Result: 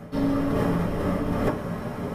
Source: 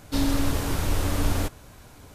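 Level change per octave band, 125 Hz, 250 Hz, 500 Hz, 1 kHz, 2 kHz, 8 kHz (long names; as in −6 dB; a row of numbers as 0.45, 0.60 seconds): 0.0, +4.0, +7.0, +3.0, −1.0, −15.0 decibels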